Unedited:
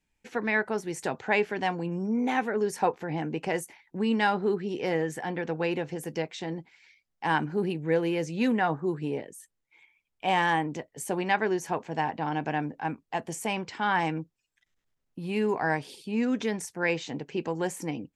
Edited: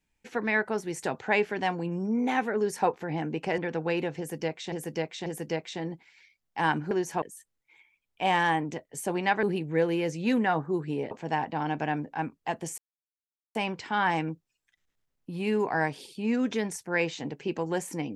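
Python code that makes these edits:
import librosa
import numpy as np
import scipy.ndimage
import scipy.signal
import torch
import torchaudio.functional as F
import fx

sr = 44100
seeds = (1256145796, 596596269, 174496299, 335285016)

y = fx.edit(x, sr, fx.cut(start_s=3.58, length_s=1.74),
    fx.repeat(start_s=5.92, length_s=0.54, count=3),
    fx.swap(start_s=7.57, length_s=1.68, other_s=11.46, other_length_s=0.31),
    fx.insert_silence(at_s=13.44, length_s=0.77), tone=tone)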